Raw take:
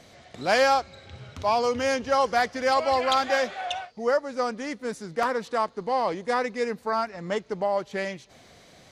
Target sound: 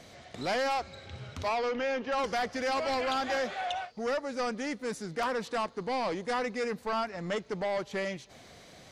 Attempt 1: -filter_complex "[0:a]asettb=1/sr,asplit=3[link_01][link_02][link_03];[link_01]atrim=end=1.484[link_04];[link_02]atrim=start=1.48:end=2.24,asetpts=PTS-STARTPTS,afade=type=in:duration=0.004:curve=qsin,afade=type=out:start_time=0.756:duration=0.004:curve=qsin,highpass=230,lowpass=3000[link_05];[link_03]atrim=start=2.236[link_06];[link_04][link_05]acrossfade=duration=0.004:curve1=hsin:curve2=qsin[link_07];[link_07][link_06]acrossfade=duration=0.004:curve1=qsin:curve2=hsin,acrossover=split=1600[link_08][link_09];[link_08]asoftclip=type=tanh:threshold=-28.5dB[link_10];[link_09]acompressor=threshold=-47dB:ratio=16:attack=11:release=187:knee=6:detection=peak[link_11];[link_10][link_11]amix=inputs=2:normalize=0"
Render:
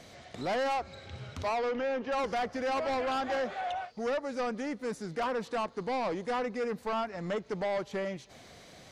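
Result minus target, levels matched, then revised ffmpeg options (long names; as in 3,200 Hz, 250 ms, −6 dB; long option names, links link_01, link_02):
downward compressor: peak gain reduction +10.5 dB
-filter_complex "[0:a]asettb=1/sr,asplit=3[link_01][link_02][link_03];[link_01]atrim=end=1.484[link_04];[link_02]atrim=start=1.48:end=2.24,asetpts=PTS-STARTPTS,afade=type=in:duration=0.004:curve=qsin,afade=type=out:start_time=0.756:duration=0.004:curve=qsin,highpass=230,lowpass=3000[link_05];[link_03]atrim=start=2.236[link_06];[link_04][link_05]acrossfade=duration=0.004:curve1=hsin:curve2=qsin[link_07];[link_07][link_06]acrossfade=duration=0.004:curve1=qsin:curve2=hsin,acrossover=split=1600[link_08][link_09];[link_08]asoftclip=type=tanh:threshold=-28.5dB[link_10];[link_09]acompressor=threshold=-36dB:ratio=16:attack=11:release=187:knee=6:detection=peak[link_11];[link_10][link_11]amix=inputs=2:normalize=0"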